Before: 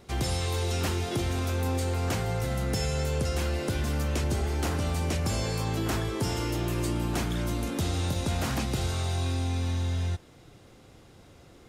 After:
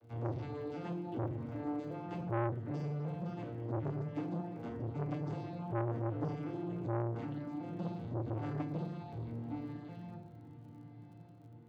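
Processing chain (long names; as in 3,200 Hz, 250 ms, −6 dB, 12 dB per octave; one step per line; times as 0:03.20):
vocoder with an arpeggio as carrier major triad, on A#2, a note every 380 ms
high-shelf EQ 5,000 Hz −11 dB
reverb reduction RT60 1.5 s
bass and treble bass 0 dB, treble −8 dB
feedback delay with all-pass diffusion 1,102 ms, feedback 49%, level −16 dB
feedback delay network reverb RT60 0.7 s, low-frequency decay 1.6×, high-frequency decay 0.8×, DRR 0.5 dB
surface crackle 52 per second −55 dBFS
saturating transformer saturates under 750 Hz
level −4 dB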